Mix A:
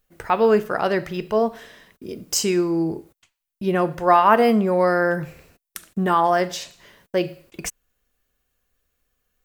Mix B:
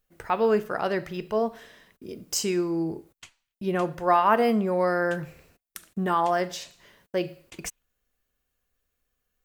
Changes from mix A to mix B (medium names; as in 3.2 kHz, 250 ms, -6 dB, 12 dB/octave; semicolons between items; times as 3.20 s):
speech -5.5 dB; background +12.0 dB